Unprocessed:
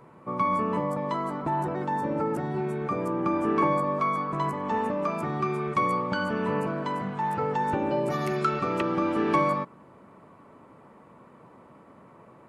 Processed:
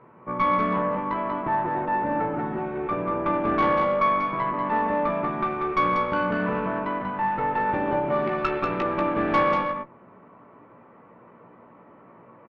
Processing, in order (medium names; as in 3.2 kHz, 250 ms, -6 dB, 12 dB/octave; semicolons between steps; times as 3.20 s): low-pass 2.6 kHz 24 dB/octave; bass shelf 110 Hz -7.5 dB; valve stage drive 19 dB, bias 0.7; doubling 17 ms -6.5 dB; delay 189 ms -4.5 dB; trim +4 dB